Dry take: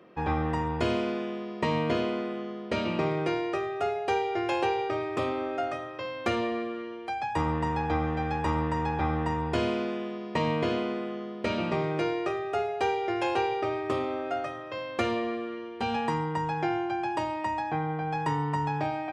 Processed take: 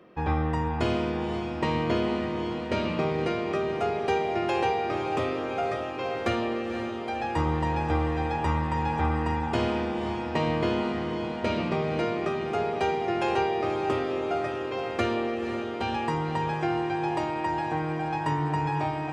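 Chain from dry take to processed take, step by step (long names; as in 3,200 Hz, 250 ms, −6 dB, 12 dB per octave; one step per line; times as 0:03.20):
low-shelf EQ 69 Hz +11 dB
feedback delay with all-pass diffusion 512 ms, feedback 73%, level −8 dB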